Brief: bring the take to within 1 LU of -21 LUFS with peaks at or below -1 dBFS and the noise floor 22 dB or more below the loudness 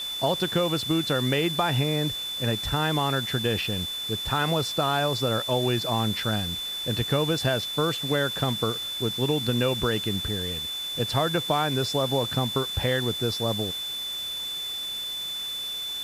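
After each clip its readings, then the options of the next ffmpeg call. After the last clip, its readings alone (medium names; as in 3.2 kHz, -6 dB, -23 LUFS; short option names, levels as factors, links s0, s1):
steady tone 3.5 kHz; tone level -30 dBFS; noise floor -33 dBFS; noise floor target -48 dBFS; loudness -26.0 LUFS; peak level -9.0 dBFS; loudness target -21.0 LUFS
-> -af "bandreject=f=3500:w=30"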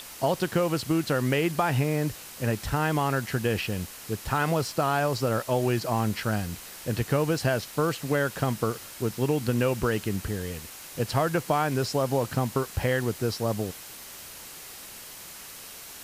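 steady tone not found; noise floor -44 dBFS; noise floor target -50 dBFS
-> -af "afftdn=nr=6:nf=-44"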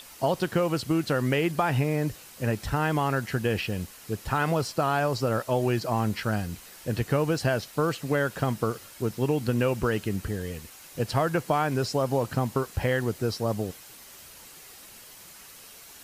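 noise floor -48 dBFS; noise floor target -50 dBFS
-> -af "afftdn=nr=6:nf=-48"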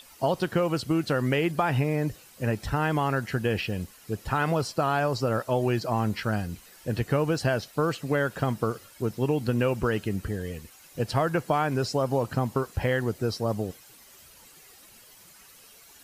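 noise floor -53 dBFS; loudness -27.5 LUFS; peak level -9.5 dBFS; loudness target -21.0 LUFS
-> -af "volume=2.11"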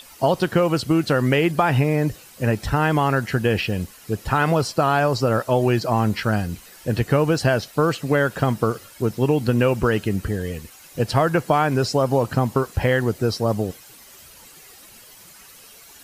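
loudness -21.0 LUFS; peak level -3.0 dBFS; noise floor -46 dBFS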